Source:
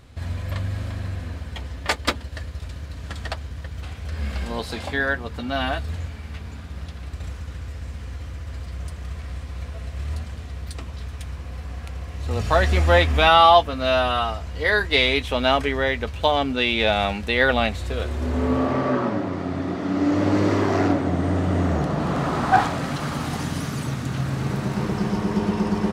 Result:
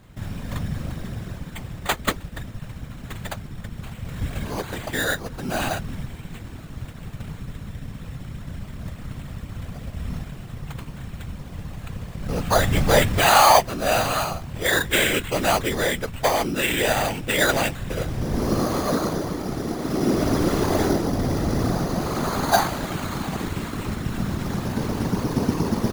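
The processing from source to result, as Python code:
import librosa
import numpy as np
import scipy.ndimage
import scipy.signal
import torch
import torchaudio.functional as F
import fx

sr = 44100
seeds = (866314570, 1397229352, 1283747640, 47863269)

y = fx.sample_hold(x, sr, seeds[0], rate_hz=5400.0, jitter_pct=0)
y = fx.whisperise(y, sr, seeds[1])
y = F.gain(torch.from_numpy(y), -1.0).numpy()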